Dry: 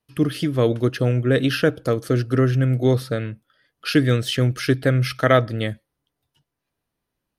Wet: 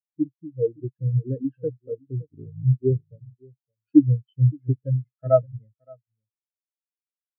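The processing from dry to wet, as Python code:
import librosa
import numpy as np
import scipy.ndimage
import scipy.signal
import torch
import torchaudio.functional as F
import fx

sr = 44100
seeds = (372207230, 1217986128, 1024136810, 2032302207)

y = fx.ring_mod(x, sr, carrier_hz=27.0, at=(2.22, 2.65))
y = y + 10.0 ** (-7.0 / 20.0) * np.pad(y, (int(568 * sr / 1000.0), 0))[:len(y)]
y = fx.spectral_expand(y, sr, expansion=4.0)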